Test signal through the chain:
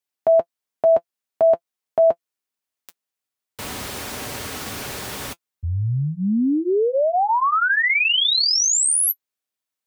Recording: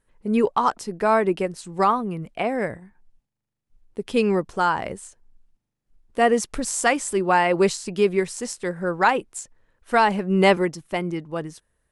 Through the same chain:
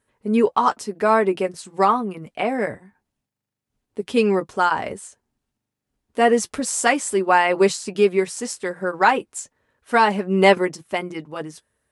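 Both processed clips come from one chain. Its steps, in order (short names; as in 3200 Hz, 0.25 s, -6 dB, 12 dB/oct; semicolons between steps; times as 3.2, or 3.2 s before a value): HPF 70 Hz 12 dB/oct; low shelf 110 Hz -6.5 dB; notch comb 170 Hz; gain +3.5 dB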